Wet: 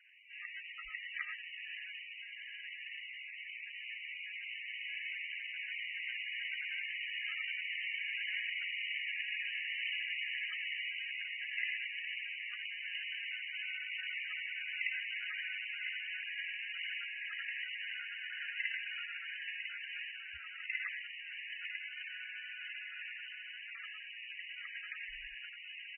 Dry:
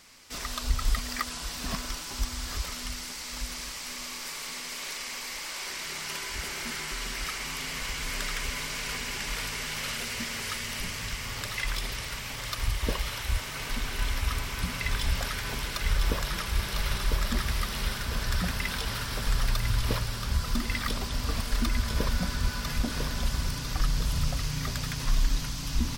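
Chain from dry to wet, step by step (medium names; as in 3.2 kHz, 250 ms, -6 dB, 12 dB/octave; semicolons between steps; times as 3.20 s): inverse Chebyshev high-pass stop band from 930 Hz, stop band 40 dB; feedback delay 72 ms, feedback 37%, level -12 dB; gated-style reverb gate 140 ms rising, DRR 2.5 dB; trim -2 dB; MP3 8 kbps 24 kHz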